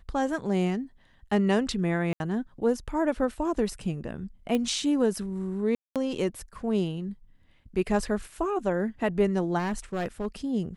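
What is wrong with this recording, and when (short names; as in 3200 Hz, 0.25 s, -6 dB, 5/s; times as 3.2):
2.13–2.2 gap 71 ms
4.55 pop -16 dBFS
5.75–5.96 gap 0.207 s
9.58–10.27 clipped -25.5 dBFS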